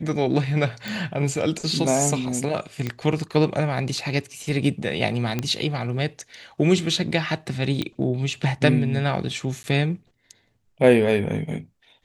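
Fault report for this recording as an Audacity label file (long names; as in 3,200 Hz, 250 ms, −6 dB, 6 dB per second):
0.880000	0.880000	click
2.870000	2.870000	click −14 dBFS
5.390000	5.390000	click −11 dBFS
7.820000	7.820000	click −13 dBFS
9.630000	9.640000	drop-out 10 ms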